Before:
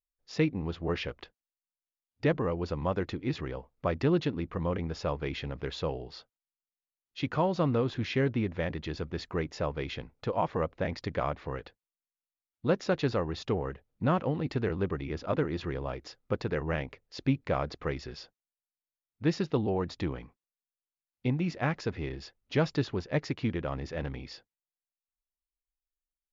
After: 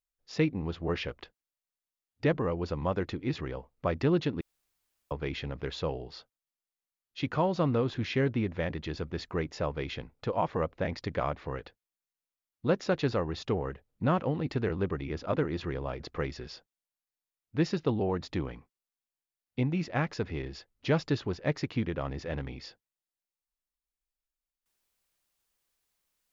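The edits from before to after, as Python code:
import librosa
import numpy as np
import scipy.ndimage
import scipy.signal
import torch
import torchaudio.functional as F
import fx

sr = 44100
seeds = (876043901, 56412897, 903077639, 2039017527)

y = fx.edit(x, sr, fx.room_tone_fill(start_s=4.41, length_s=0.7),
    fx.cut(start_s=16.0, length_s=1.67), tone=tone)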